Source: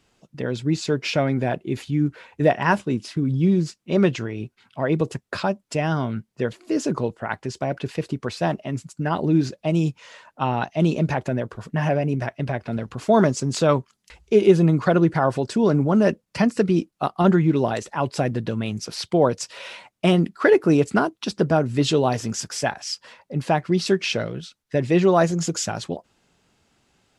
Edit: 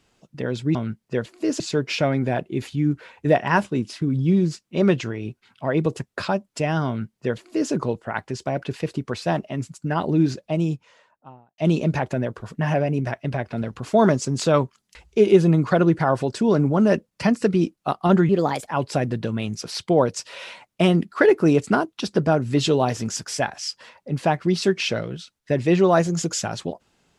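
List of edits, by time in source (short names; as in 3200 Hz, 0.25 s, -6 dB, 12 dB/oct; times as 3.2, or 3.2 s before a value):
6.02–6.87 copy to 0.75
9.4–10.73 studio fade out
17.44–17.91 speed 123%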